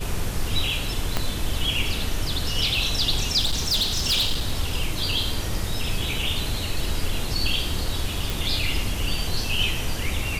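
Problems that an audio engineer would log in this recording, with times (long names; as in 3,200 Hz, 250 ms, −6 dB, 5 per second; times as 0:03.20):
0:01.17: click −8 dBFS
0:03.39–0:04.54: clipping −18 dBFS
0:08.30: click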